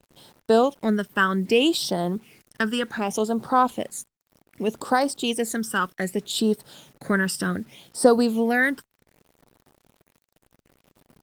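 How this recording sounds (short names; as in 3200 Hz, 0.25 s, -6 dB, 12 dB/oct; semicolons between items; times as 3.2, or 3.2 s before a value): phasing stages 12, 0.65 Hz, lowest notch 710–2400 Hz; a quantiser's noise floor 10-bit, dither none; Opus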